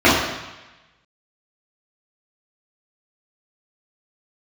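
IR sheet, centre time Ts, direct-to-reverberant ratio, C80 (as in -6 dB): 66 ms, -10.5 dB, 4.0 dB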